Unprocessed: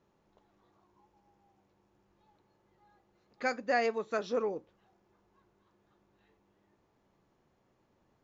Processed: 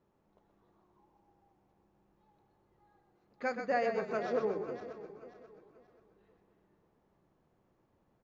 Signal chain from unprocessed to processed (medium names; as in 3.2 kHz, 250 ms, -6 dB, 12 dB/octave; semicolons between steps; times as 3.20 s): backward echo that repeats 267 ms, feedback 55%, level -10 dB; treble shelf 2.1 kHz -9 dB; frequency-shifting echo 126 ms, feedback 39%, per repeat -34 Hz, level -7 dB; trim -1.5 dB